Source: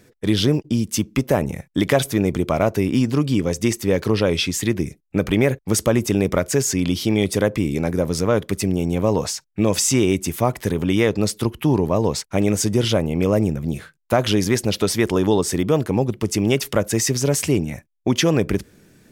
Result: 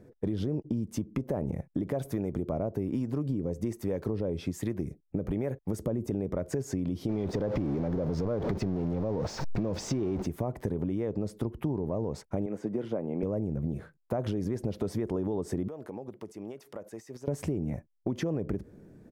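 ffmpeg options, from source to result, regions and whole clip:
-filter_complex "[0:a]asettb=1/sr,asplit=3[s0][s1][s2];[s0]atrim=end=1.794[s3];[s1]atrim=start=1.79:end=6.11,asetpts=PTS-STARTPTS,afade=t=in:d=0.004:c=qsin,afade=t=out:st=4.316:d=0.004:c=qsin,highshelf=f=9100:g=7.5,acrossover=split=710[s4][s5];[s4]aeval=exprs='val(0)*(1-0.5/2+0.5/2*cos(2*PI*1.2*n/s))':c=same[s6];[s5]aeval=exprs='val(0)*(1-0.5/2-0.5/2*cos(2*PI*1.2*n/s))':c=same[s7];[s6][s7]amix=inputs=2:normalize=0[s8];[s2]atrim=start=6.106[s9];[s3][s8]acrossfade=d=0.004:c1=hsin:c2=qsin[s10];[s10][s9]acrossfade=d=0.004:c1=qsin:c2=hsin,asettb=1/sr,asplit=3[s11][s12][s13];[s11]atrim=end=7.094[s14];[s12]atrim=start=7.09:end=10.26,asetpts=PTS-STARTPTS,afade=t=in:d=0.004:c=qsin,afade=t=out:st=3.166:d=0.004:c=qsin,aeval=exprs='val(0)+0.5*0.106*sgn(val(0))':c=same,highshelf=f=7000:t=q:w=1.5:g=-11[s15];[s13]atrim=start=10.256[s16];[s14][s15]acrossfade=d=0.004:c1=hsin:c2=qsin[s17];[s17][s16]acrossfade=d=0.004:c1=qsin:c2=hsin,asettb=1/sr,asplit=3[s18][s19][s20];[s18]atrim=end=12.464[s21];[s19]atrim=start=12.46:end=13.23,asetpts=PTS-STARTPTS,afade=t=in:d=0.004:c=qsin,afade=t=out:st=0.766:d=0.004:c=qsin,acrossover=split=1300|5200[s22][s23][s24];[s22]acompressor=threshold=0.0631:ratio=4[s25];[s23]acompressor=threshold=0.0251:ratio=4[s26];[s24]acompressor=threshold=0.0316:ratio=4[s27];[s25][s26][s27]amix=inputs=3:normalize=0,acrossover=split=170 2700:gain=0.0891 1 0.2[s28][s29][s30];[s28][s29][s30]amix=inputs=3:normalize=0[s31];[s20]atrim=start=13.226[s32];[s21][s31]acrossfade=d=0.004:c1=hsin:c2=qsin[s33];[s33][s32]acrossfade=d=0.004:c1=qsin:c2=hsin,asettb=1/sr,asplit=3[s34][s35][s36];[s34]atrim=end=15.684[s37];[s35]atrim=start=15.68:end=17.28,asetpts=PTS-STARTPTS,afade=t=in:d=0.004:c=qsin,afade=t=out:st=1.596:d=0.004:c=qsin,highpass=f=840:p=1,acompressor=threshold=0.02:ratio=10:attack=3.2:release=140:knee=1:detection=peak[s38];[s36]atrim=start=17.276[s39];[s37][s38]acrossfade=d=0.004:c1=hsin:c2=qsin[s40];[s40][s39]acrossfade=d=0.004:c1=qsin:c2=hsin,firequalizer=gain_entry='entry(580,0);entry(1200,-9);entry(2800,-20)':delay=0.05:min_phase=1,alimiter=limit=0.158:level=0:latency=1:release=91,acompressor=threshold=0.0447:ratio=6"

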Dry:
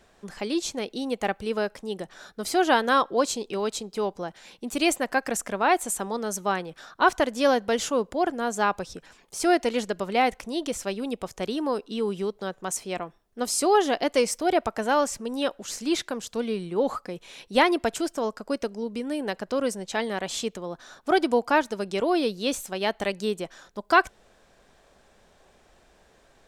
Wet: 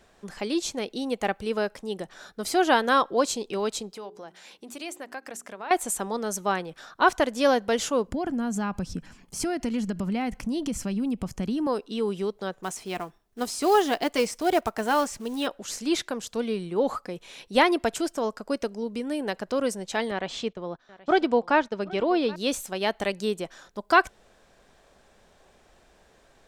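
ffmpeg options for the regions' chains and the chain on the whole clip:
-filter_complex "[0:a]asettb=1/sr,asplit=3[s0][s1][s2];[s0]atrim=end=3.934[s3];[s1]atrim=start=3.93:end=5.71,asetpts=PTS-STARTPTS,afade=t=in:d=0.004:c=qsin,afade=t=out:st=1.776:d=0.004:c=qsin,highpass=f=270:p=1,bandreject=f=60:t=h:w=6,bandreject=f=120:t=h:w=6,bandreject=f=180:t=h:w=6,bandreject=f=240:t=h:w=6,bandreject=f=300:t=h:w=6,bandreject=f=360:t=h:w=6,bandreject=f=420:t=h:w=6,acompressor=threshold=0.00708:ratio=2:attack=3.2:release=140:knee=1:detection=peak[s4];[s2]atrim=start=5.706[s5];[s3][s4]acrossfade=d=0.004:c1=hsin:c2=qsin[s6];[s6][s5]acrossfade=d=0.004:c1=qsin:c2=hsin,asettb=1/sr,asplit=3[s7][s8][s9];[s7]atrim=end=8.074[s10];[s8]atrim=start=8.07:end=11.67,asetpts=PTS-STARTPTS,afade=t=in:d=0.004:c=qsin,afade=t=out:st=3.596:d=0.004:c=qsin,lowshelf=f=310:t=q:w=1.5:g=11,bandreject=f=3700:w=9.2,acompressor=threshold=0.0562:ratio=4:attack=3.2:release=140:knee=1:detection=peak[s11];[s9]atrim=start=11.666[s12];[s10][s11]acrossfade=d=0.004:c1=hsin:c2=qsin[s13];[s13][s12]acrossfade=d=0.004:c1=qsin:c2=hsin,asettb=1/sr,asplit=3[s14][s15][s16];[s14]atrim=end=12.634[s17];[s15]atrim=start=12.63:end=15.47,asetpts=PTS-STARTPTS,afade=t=in:d=0.004:c=qsin,afade=t=out:st=2.836:d=0.004:c=qsin,acrossover=split=4300[s18][s19];[s19]acompressor=threshold=0.02:ratio=4:attack=1:release=60[s20];[s18][s20]amix=inputs=2:normalize=0,bandreject=f=540:w=6.7,acrusher=bits=5:mode=log:mix=0:aa=0.000001[s21];[s16]atrim=start=15.466[s22];[s17][s21]acrossfade=d=0.004:c1=hsin:c2=qsin[s23];[s23][s22]acrossfade=d=0.004:c1=qsin:c2=hsin,asettb=1/sr,asplit=3[s24][s25][s26];[s24]atrim=end=20.114[s27];[s25]atrim=start=20.11:end=22.36,asetpts=PTS-STARTPTS,afade=t=in:d=0.004:c=qsin,afade=t=out:st=2.246:d=0.004:c=qsin,lowpass=4100,agate=range=0.2:threshold=0.00891:ratio=16:release=100:detection=peak,aecho=1:1:777:0.0944,atrim=end_sample=99225[s28];[s26]atrim=start=22.356[s29];[s27][s28]acrossfade=d=0.004:c1=hsin:c2=qsin[s30];[s30][s29]acrossfade=d=0.004:c1=qsin:c2=hsin"

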